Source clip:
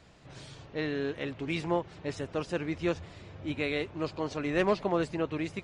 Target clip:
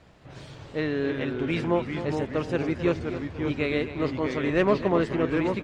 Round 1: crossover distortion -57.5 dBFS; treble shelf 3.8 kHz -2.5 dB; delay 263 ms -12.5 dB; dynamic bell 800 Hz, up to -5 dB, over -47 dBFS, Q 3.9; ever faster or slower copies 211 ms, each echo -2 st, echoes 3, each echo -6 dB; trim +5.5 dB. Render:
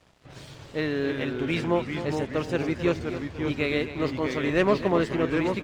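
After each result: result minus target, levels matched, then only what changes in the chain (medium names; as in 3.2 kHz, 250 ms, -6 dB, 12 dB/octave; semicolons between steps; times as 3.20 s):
crossover distortion: distortion +10 dB; 8 kHz band +5.0 dB
change: crossover distortion -68 dBFS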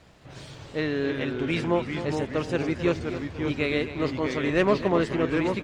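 8 kHz band +5.0 dB
change: treble shelf 3.8 kHz -9.5 dB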